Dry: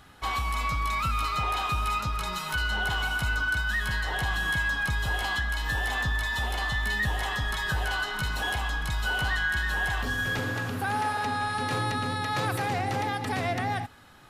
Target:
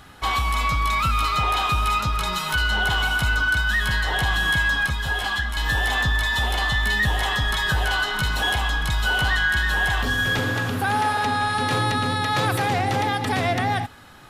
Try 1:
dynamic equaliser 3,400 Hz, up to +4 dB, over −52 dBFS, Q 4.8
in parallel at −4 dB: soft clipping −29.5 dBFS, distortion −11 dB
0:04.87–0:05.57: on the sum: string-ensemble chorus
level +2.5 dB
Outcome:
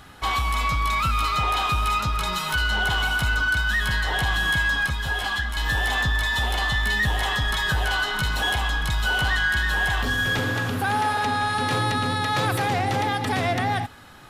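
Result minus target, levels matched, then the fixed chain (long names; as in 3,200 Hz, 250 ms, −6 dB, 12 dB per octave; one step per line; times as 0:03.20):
soft clipping: distortion +12 dB
dynamic equaliser 3,400 Hz, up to +4 dB, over −52 dBFS, Q 4.8
in parallel at −4 dB: soft clipping −20 dBFS, distortion −23 dB
0:04.87–0:05.57: on the sum: string-ensemble chorus
level +2.5 dB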